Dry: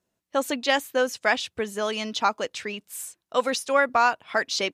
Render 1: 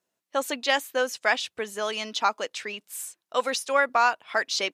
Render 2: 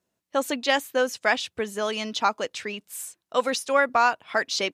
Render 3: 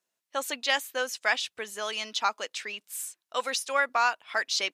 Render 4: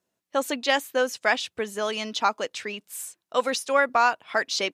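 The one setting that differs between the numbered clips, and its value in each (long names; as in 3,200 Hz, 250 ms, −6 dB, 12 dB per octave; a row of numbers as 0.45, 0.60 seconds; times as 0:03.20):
high-pass filter, corner frequency: 480, 69, 1,400, 190 Hertz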